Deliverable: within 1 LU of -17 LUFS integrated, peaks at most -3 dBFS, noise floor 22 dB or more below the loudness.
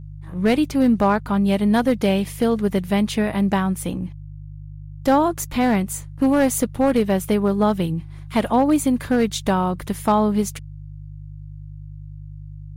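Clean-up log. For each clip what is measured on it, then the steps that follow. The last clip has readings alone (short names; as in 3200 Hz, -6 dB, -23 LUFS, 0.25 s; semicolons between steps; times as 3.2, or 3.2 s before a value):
clipped 1.1%; flat tops at -10.0 dBFS; hum 50 Hz; harmonics up to 150 Hz; hum level -34 dBFS; loudness -20.5 LUFS; peak -10.0 dBFS; loudness target -17.0 LUFS
-> clip repair -10 dBFS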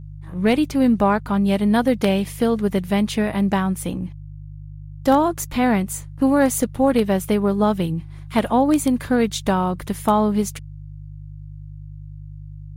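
clipped 0.0%; hum 50 Hz; harmonics up to 150 Hz; hum level -34 dBFS
-> de-hum 50 Hz, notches 3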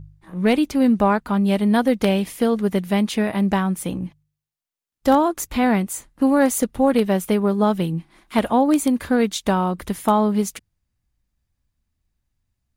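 hum none; loudness -20.0 LUFS; peak -1.0 dBFS; loudness target -17.0 LUFS
-> gain +3 dB; limiter -3 dBFS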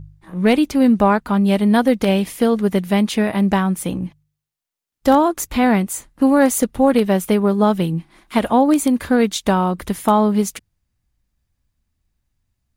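loudness -17.0 LUFS; peak -3.0 dBFS; noise floor -80 dBFS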